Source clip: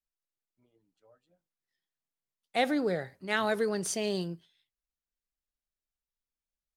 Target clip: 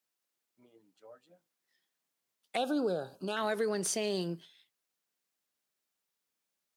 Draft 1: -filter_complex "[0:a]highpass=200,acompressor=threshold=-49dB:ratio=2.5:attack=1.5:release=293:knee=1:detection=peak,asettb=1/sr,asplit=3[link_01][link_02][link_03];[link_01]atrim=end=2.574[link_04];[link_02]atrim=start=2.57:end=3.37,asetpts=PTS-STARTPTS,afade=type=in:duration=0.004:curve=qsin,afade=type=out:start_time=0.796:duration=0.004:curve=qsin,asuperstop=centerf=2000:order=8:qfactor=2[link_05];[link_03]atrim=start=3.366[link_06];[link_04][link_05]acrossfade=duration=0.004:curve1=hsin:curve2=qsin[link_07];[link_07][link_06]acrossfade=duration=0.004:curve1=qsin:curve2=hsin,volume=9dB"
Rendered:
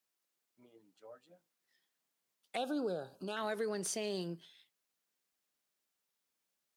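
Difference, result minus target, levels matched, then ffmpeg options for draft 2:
downward compressor: peak gain reduction +5 dB
-filter_complex "[0:a]highpass=200,acompressor=threshold=-40.5dB:ratio=2.5:attack=1.5:release=293:knee=1:detection=peak,asettb=1/sr,asplit=3[link_01][link_02][link_03];[link_01]atrim=end=2.574[link_04];[link_02]atrim=start=2.57:end=3.37,asetpts=PTS-STARTPTS,afade=type=in:duration=0.004:curve=qsin,afade=type=out:start_time=0.796:duration=0.004:curve=qsin,asuperstop=centerf=2000:order=8:qfactor=2[link_05];[link_03]atrim=start=3.366[link_06];[link_04][link_05]acrossfade=duration=0.004:curve1=hsin:curve2=qsin[link_07];[link_07][link_06]acrossfade=duration=0.004:curve1=qsin:curve2=hsin,volume=9dB"

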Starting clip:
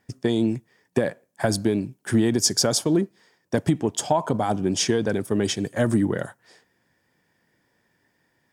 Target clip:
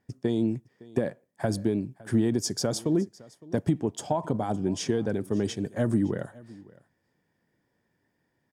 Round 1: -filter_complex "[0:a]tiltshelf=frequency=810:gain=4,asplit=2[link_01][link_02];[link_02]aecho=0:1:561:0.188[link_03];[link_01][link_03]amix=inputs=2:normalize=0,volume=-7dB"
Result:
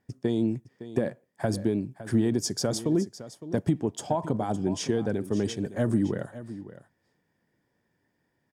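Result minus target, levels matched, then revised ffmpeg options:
echo-to-direct +7.5 dB
-filter_complex "[0:a]tiltshelf=frequency=810:gain=4,asplit=2[link_01][link_02];[link_02]aecho=0:1:561:0.0794[link_03];[link_01][link_03]amix=inputs=2:normalize=0,volume=-7dB"

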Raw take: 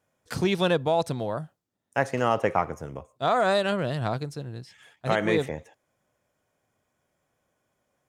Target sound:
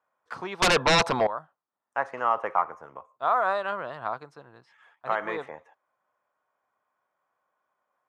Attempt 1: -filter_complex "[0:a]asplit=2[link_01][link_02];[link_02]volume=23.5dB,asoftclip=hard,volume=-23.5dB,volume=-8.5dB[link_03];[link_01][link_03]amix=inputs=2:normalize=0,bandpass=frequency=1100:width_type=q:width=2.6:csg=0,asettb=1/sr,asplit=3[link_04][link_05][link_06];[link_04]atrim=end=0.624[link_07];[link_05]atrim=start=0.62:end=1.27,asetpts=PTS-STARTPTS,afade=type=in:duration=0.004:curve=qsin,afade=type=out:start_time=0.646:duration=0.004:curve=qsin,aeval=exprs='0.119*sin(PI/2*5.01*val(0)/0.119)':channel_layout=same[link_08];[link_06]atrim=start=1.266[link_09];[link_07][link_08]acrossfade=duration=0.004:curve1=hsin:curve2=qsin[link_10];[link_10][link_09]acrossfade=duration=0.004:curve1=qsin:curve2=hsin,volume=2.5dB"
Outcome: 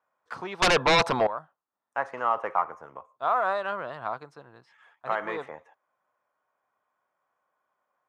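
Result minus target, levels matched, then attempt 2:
gain into a clipping stage and back: distortion +13 dB
-filter_complex "[0:a]asplit=2[link_01][link_02];[link_02]volume=14dB,asoftclip=hard,volume=-14dB,volume=-8.5dB[link_03];[link_01][link_03]amix=inputs=2:normalize=0,bandpass=frequency=1100:width_type=q:width=2.6:csg=0,asettb=1/sr,asplit=3[link_04][link_05][link_06];[link_04]atrim=end=0.624[link_07];[link_05]atrim=start=0.62:end=1.27,asetpts=PTS-STARTPTS,afade=type=in:duration=0.004:curve=qsin,afade=type=out:start_time=0.646:duration=0.004:curve=qsin,aeval=exprs='0.119*sin(PI/2*5.01*val(0)/0.119)':channel_layout=same[link_08];[link_06]atrim=start=1.266[link_09];[link_07][link_08]acrossfade=duration=0.004:curve1=hsin:curve2=qsin[link_10];[link_10][link_09]acrossfade=duration=0.004:curve1=qsin:curve2=hsin,volume=2.5dB"

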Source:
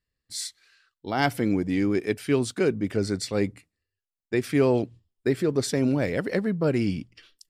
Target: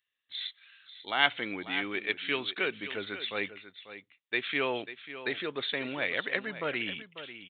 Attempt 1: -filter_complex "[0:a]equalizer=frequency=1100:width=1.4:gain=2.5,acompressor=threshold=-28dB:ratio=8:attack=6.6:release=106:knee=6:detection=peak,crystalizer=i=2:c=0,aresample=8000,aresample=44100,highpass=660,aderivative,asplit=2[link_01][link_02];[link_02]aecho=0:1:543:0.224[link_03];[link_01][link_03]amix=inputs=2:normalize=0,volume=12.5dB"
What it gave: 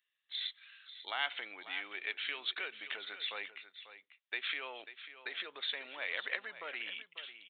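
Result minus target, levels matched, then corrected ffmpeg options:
downward compressor: peak gain reduction +13 dB; 500 Hz band −8.0 dB
-filter_complex "[0:a]equalizer=frequency=1100:width=1.4:gain=2.5,crystalizer=i=2:c=0,aresample=8000,aresample=44100,aderivative,asplit=2[link_01][link_02];[link_02]aecho=0:1:543:0.224[link_03];[link_01][link_03]amix=inputs=2:normalize=0,volume=12.5dB"

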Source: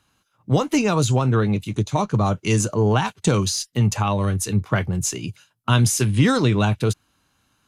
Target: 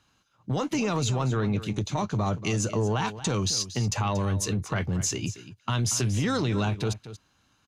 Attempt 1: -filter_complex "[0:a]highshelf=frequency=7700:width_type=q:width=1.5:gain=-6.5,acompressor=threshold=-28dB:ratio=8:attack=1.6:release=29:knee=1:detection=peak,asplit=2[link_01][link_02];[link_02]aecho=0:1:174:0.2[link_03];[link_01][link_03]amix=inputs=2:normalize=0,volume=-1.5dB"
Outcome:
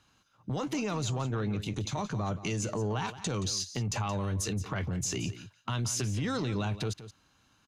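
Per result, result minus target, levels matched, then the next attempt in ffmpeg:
downward compressor: peak gain reduction +5.5 dB; echo 59 ms early
-filter_complex "[0:a]highshelf=frequency=7700:width_type=q:width=1.5:gain=-6.5,acompressor=threshold=-21.5dB:ratio=8:attack=1.6:release=29:knee=1:detection=peak,asplit=2[link_01][link_02];[link_02]aecho=0:1:174:0.2[link_03];[link_01][link_03]amix=inputs=2:normalize=0,volume=-1.5dB"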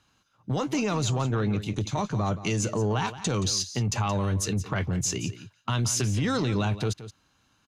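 echo 59 ms early
-filter_complex "[0:a]highshelf=frequency=7700:width_type=q:width=1.5:gain=-6.5,acompressor=threshold=-21.5dB:ratio=8:attack=1.6:release=29:knee=1:detection=peak,asplit=2[link_01][link_02];[link_02]aecho=0:1:233:0.2[link_03];[link_01][link_03]amix=inputs=2:normalize=0,volume=-1.5dB"

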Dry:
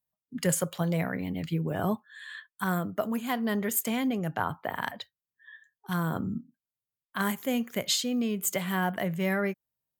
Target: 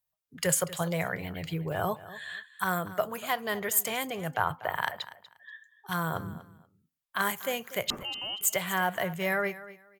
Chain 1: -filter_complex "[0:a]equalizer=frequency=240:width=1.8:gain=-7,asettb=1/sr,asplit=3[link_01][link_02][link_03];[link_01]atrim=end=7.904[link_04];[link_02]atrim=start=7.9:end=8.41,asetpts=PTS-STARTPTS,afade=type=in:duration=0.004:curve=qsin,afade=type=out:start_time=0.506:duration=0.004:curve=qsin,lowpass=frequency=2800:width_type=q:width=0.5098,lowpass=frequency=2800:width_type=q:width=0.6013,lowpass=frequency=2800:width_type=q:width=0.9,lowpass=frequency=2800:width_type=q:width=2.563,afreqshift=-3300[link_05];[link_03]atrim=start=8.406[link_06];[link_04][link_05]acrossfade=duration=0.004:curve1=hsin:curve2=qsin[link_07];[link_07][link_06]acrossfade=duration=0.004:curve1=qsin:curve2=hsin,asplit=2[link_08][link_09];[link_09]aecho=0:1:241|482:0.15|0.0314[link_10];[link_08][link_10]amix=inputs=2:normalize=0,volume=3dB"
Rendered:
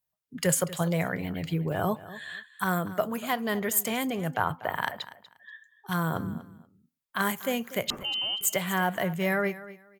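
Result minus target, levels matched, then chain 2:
250 Hz band +4.5 dB
-filter_complex "[0:a]equalizer=frequency=240:width=1.8:gain=-18.5,asettb=1/sr,asplit=3[link_01][link_02][link_03];[link_01]atrim=end=7.904[link_04];[link_02]atrim=start=7.9:end=8.41,asetpts=PTS-STARTPTS,afade=type=in:duration=0.004:curve=qsin,afade=type=out:start_time=0.506:duration=0.004:curve=qsin,lowpass=frequency=2800:width_type=q:width=0.5098,lowpass=frequency=2800:width_type=q:width=0.6013,lowpass=frequency=2800:width_type=q:width=0.9,lowpass=frequency=2800:width_type=q:width=2.563,afreqshift=-3300[link_05];[link_03]atrim=start=8.406[link_06];[link_04][link_05]acrossfade=duration=0.004:curve1=hsin:curve2=qsin[link_07];[link_07][link_06]acrossfade=duration=0.004:curve1=qsin:curve2=hsin,asplit=2[link_08][link_09];[link_09]aecho=0:1:241|482:0.15|0.0314[link_10];[link_08][link_10]amix=inputs=2:normalize=0,volume=3dB"

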